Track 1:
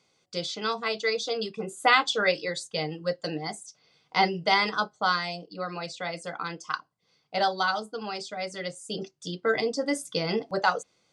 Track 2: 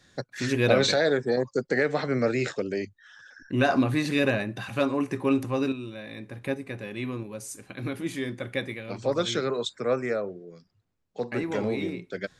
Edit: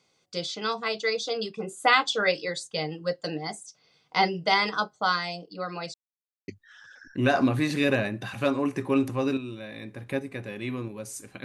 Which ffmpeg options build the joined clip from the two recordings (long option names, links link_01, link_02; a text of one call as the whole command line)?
ffmpeg -i cue0.wav -i cue1.wav -filter_complex "[0:a]apad=whole_dur=11.44,atrim=end=11.44,asplit=2[link_01][link_02];[link_01]atrim=end=5.94,asetpts=PTS-STARTPTS,afade=type=out:start_time=5.936:duration=0.004:curve=hsin[link_03];[link_02]atrim=start=5.94:end=6.48,asetpts=PTS-STARTPTS,volume=0[link_04];[1:a]atrim=start=2.83:end=7.79,asetpts=PTS-STARTPTS,afade=type=in:duration=0.004:curve=hsin[link_05];[link_03][link_04][link_05]concat=n=3:v=0:a=1" out.wav